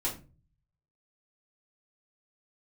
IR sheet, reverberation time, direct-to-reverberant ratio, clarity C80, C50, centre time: 0.35 s, −5.0 dB, 16.0 dB, 9.5 dB, 22 ms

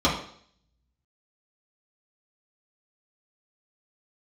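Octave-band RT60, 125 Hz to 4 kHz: 0.70, 0.60, 0.60, 0.60, 0.55, 0.65 seconds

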